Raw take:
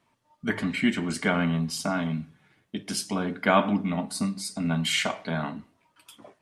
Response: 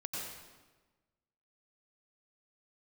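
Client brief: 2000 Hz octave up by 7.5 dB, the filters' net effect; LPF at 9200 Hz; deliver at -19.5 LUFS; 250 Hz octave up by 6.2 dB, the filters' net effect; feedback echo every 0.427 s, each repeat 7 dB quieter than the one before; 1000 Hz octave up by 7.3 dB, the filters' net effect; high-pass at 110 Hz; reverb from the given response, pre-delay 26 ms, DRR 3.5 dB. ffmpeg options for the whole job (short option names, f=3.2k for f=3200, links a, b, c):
-filter_complex "[0:a]highpass=110,lowpass=9.2k,equalizer=f=250:t=o:g=7.5,equalizer=f=1k:t=o:g=7,equalizer=f=2k:t=o:g=7,aecho=1:1:427|854|1281|1708|2135:0.447|0.201|0.0905|0.0407|0.0183,asplit=2[a][b];[1:a]atrim=start_sample=2205,adelay=26[c];[b][c]afir=irnorm=-1:irlink=0,volume=-5dB[d];[a][d]amix=inputs=2:normalize=0"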